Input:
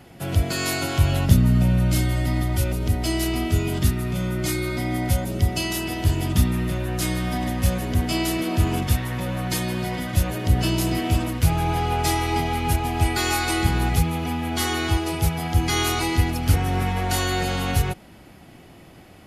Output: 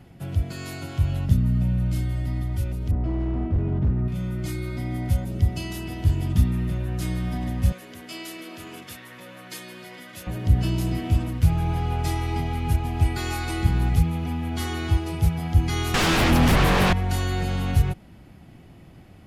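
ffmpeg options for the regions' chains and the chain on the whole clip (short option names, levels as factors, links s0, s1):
-filter_complex "[0:a]asettb=1/sr,asplit=3[s0][s1][s2];[s0]atrim=end=2.914[s3];[s1]atrim=start=2.91:end=4.08,asetpts=PTS-STARTPTS,afade=t=in:d=0.004:c=qsin,afade=t=out:st=1.166:d=0.004:c=qsin,lowpass=1100,acontrast=35,volume=5.62,asoftclip=hard,volume=0.178[s4];[s2]atrim=start=4.076[s5];[s3][s4]acrossfade=d=0.004:c1=hsin:c2=qsin[s6];[s6][s5]acrossfade=d=0.004:c1=qsin:c2=hsin,asettb=1/sr,asplit=3[s7][s8][s9];[s7]atrim=end=7.724[s10];[s8]atrim=start=7.72:end=10.27,asetpts=PTS-STARTPTS,afade=t=in:d=0.004:c=qsin,afade=t=out:st=2.546:d=0.004:c=qsin,highpass=500,equalizer=f=800:t=o:w=0.63:g=-8.5[s11];[s9]atrim=start=10.266[s12];[s10][s11]acrossfade=d=0.004:c1=hsin:c2=qsin[s13];[s13][s12]acrossfade=d=0.004:c1=qsin:c2=hsin,asettb=1/sr,asplit=3[s14][s15][s16];[s14]atrim=end=15.944[s17];[s15]atrim=start=15.94:end=16.93,asetpts=PTS-STARTPTS,afade=t=in:d=0.004:c=qsin,afade=t=out:st=0.986:d=0.004:c=qsin,acrossover=split=3400[s18][s19];[s19]acompressor=threshold=0.0126:ratio=4:attack=1:release=60[s20];[s18][s20]amix=inputs=2:normalize=0,equalizer=f=85:t=o:w=1.7:g=-8.5,aeval=exprs='0.266*sin(PI/2*6.31*val(0)/0.266)':c=same[s21];[s16]atrim=start=16.926[s22];[s17][s21]acrossfade=d=0.004:c1=hsin:c2=qsin[s23];[s23][s22]acrossfade=d=0.004:c1=qsin:c2=hsin,bass=f=250:g=9,treble=f=4000:g=-3,dynaudnorm=f=340:g=17:m=3.76,volume=0.501"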